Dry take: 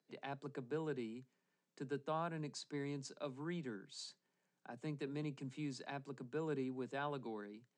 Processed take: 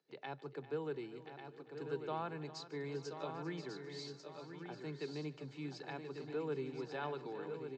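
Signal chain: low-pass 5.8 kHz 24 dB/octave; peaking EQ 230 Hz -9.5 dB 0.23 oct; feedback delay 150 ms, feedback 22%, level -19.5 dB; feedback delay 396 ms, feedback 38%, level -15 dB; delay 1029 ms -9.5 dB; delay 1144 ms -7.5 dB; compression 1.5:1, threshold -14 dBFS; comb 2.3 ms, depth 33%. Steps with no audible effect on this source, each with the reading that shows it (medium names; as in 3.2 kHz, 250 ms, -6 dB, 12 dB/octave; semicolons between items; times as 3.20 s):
compression, threshold -14 dBFS: peak at its input -27.5 dBFS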